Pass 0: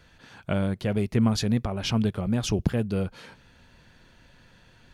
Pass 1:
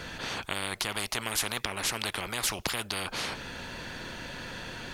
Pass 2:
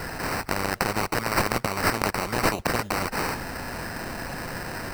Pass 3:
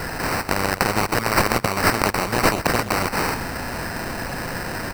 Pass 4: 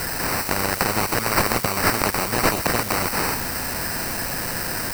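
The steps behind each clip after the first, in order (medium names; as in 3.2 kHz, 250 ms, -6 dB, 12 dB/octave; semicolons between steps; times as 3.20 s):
spectrum-flattening compressor 10:1; trim +1.5 dB
sample-rate reducer 3.4 kHz, jitter 0%; trim +7 dB
delay 125 ms -13.5 dB; trim +5 dB
zero-crossing glitches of -14 dBFS; trim -2 dB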